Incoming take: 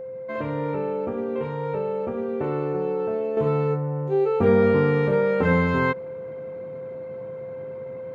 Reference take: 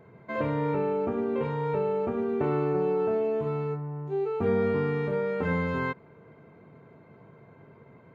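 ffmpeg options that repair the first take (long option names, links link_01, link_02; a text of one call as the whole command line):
ffmpeg -i in.wav -af "bandreject=frequency=520:width=30,asetnsamples=nb_out_samples=441:pad=0,asendcmd='3.37 volume volume -7.5dB',volume=0dB" out.wav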